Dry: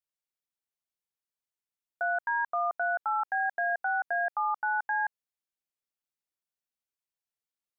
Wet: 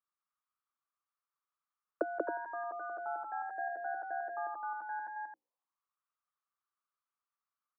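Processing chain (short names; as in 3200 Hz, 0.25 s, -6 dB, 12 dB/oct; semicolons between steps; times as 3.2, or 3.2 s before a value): notches 60/120/180/240/300/360/420/480/540 Hz; auto-wah 320–1200 Hz, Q 8.4, down, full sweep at -33 dBFS; loudspeakers at several distances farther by 64 m -2 dB, 93 m -7 dB; gain +14 dB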